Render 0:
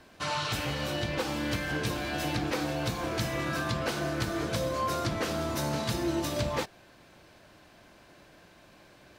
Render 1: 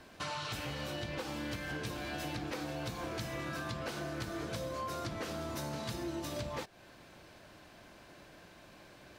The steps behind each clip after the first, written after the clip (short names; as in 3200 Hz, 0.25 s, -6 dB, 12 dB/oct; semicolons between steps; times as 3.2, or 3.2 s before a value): compressor 3:1, threshold -39 dBFS, peak gain reduction 10.5 dB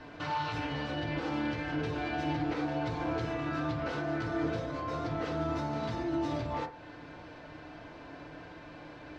limiter -34 dBFS, peak gain reduction 7.5 dB; air absorption 170 m; FDN reverb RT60 0.43 s, low-frequency decay 0.8×, high-frequency decay 0.35×, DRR -1.5 dB; gain +4.5 dB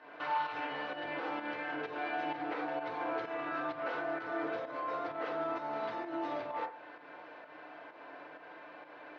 pump 129 bpm, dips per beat 1, -8 dB, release 0.167 s; BPF 520–2400 Hz; gain +1.5 dB